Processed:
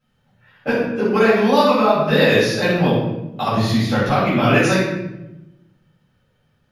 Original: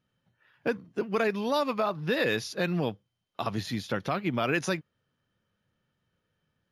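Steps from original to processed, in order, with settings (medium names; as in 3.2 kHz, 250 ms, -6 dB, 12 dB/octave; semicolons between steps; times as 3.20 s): simulated room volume 350 m³, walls mixed, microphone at 6.6 m; trim -2 dB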